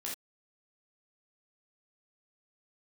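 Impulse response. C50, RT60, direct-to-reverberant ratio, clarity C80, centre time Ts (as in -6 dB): 4.0 dB, not exponential, -4.0 dB, 12.5 dB, 32 ms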